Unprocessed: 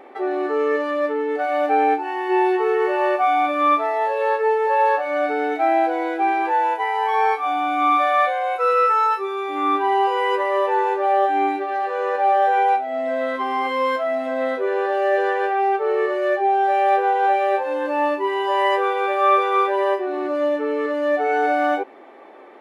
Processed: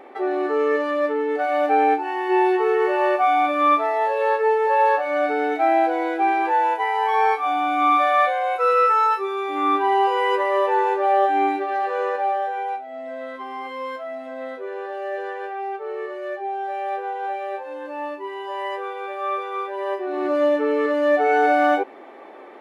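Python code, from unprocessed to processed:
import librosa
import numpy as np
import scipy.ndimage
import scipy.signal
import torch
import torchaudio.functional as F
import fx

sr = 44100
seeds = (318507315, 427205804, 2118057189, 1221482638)

y = fx.gain(x, sr, db=fx.line((12.01, 0.0), (12.54, -9.5), (19.71, -9.5), (20.29, 2.0)))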